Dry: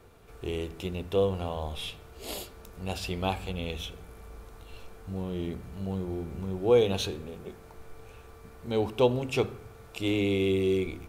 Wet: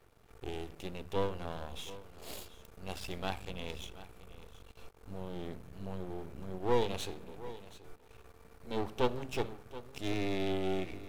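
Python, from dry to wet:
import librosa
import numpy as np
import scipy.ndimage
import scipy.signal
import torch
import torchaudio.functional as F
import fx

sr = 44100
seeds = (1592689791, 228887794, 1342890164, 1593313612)

y = np.maximum(x, 0.0)
y = y + 10.0 ** (-16.0 / 20.0) * np.pad(y, (int(727 * sr / 1000.0), 0))[:len(y)]
y = y * librosa.db_to_amplitude(-4.0)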